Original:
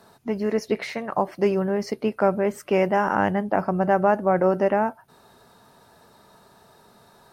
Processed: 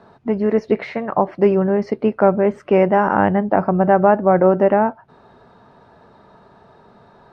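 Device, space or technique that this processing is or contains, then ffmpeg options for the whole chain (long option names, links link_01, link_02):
phone in a pocket: -af "lowpass=3700,highshelf=frequency=2300:gain=-10.5,volume=7dB"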